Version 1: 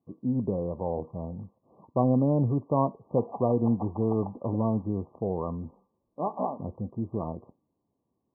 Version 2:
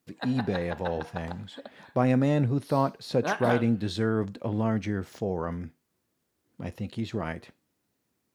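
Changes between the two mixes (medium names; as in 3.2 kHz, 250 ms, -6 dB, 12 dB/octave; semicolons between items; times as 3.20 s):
background: entry -2.95 s; master: remove brick-wall FIR low-pass 1.2 kHz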